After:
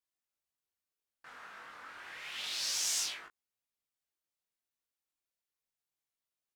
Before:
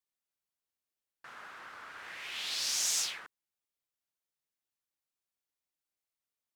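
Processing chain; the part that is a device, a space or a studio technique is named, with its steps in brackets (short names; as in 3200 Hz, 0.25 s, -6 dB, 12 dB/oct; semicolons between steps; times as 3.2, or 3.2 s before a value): double-tracked vocal (doubler 20 ms -5 dB; chorus 0.32 Hz, delay 17 ms, depth 7.5 ms)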